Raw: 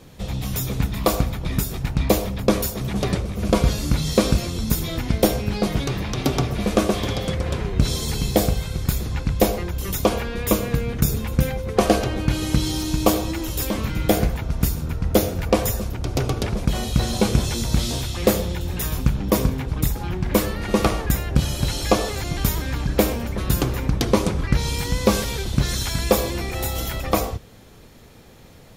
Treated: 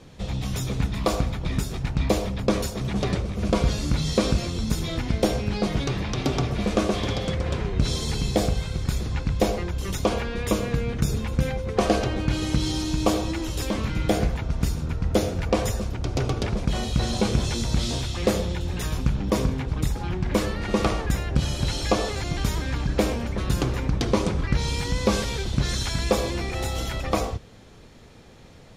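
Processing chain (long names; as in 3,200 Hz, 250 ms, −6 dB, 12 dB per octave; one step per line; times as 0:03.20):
low-pass filter 7,500 Hz 12 dB per octave
in parallel at −1 dB: brickwall limiter −13.5 dBFS, peak gain reduction 9 dB
on the sum: level −7 dB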